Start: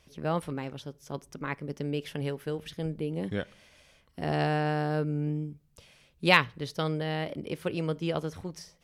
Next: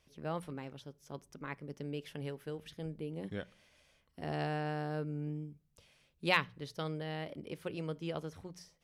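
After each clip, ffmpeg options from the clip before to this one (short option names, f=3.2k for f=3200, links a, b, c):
-af "bandreject=f=60:t=h:w=6,bandreject=f=120:t=h:w=6,bandreject=f=180:t=h:w=6,volume=-8.5dB"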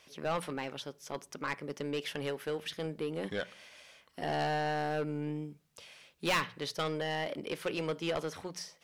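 -filter_complex "[0:a]asplit=2[a][b];[b]highpass=f=720:p=1,volume=28dB,asoftclip=type=tanh:threshold=-13.5dB[c];[a][c]amix=inputs=2:normalize=0,lowpass=f=7.7k:p=1,volume=-6dB,volume=-8dB"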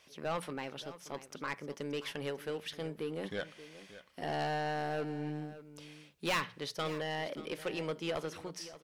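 -af "aecho=1:1:579:0.178,volume=-2.5dB"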